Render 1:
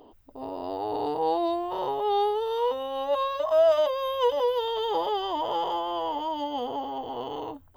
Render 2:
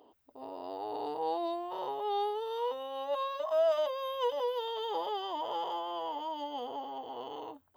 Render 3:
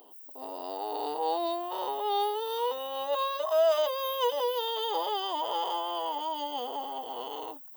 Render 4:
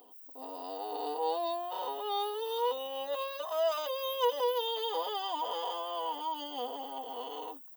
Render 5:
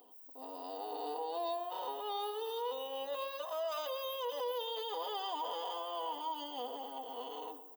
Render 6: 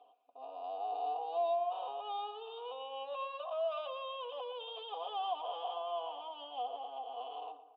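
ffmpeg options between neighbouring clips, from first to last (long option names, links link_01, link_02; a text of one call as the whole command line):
ffmpeg -i in.wav -af "highpass=frequency=340:poles=1,volume=-6.5dB" out.wav
ffmpeg -i in.wav -af "aemphasis=mode=production:type=bsi,volume=4.5dB" out.wav
ffmpeg -i in.wav -af "aecho=1:1:4.1:0.62,volume=-4.5dB" out.wav
ffmpeg -i in.wav -filter_complex "[0:a]alimiter=level_in=3dB:limit=-24dB:level=0:latency=1:release=11,volume=-3dB,asplit=2[link_01][link_02];[link_02]adelay=119,lowpass=frequency=2300:poles=1,volume=-12.5dB,asplit=2[link_03][link_04];[link_04]adelay=119,lowpass=frequency=2300:poles=1,volume=0.54,asplit=2[link_05][link_06];[link_06]adelay=119,lowpass=frequency=2300:poles=1,volume=0.54,asplit=2[link_07][link_08];[link_08]adelay=119,lowpass=frequency=2300:poles=1,volume=0.54,asplit=2[link_09][link_10];[link_10]adelay=119,lowpass=frequency=2300:poles=1,volume=0.54,asplit=2[link_11][link_12];[link_12]adelay=119,lowpass=frequency=2300:poles=1,volume=0.54[link_13];[link_01][link_03][link_05][link_07][link_09][link_11][link_13]amix=inputs=7:normalize=0,volume=-3.5dB" out.wav
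ffmpeg -i in.wav -filter_complex "[0:a]asplit=3[link_01][link_02][link_03];[link_01]bandpass=frequency=730:width_type=q:width=8,volume=0dB[link_04];[link_02]bandpass=frequency=1090:width_type=q:width=8,volume=-6dB[link_05];[link_03]bandpass=frequency=2440:width_type=q:width=8,volume=-9dB[link_06];[link_04][link_05][link_06]amix=inputs=3:normalize=0,highshelf=frequency=4700:width_type=q:width=3:gain=-10.5,volume=8dB" out.wav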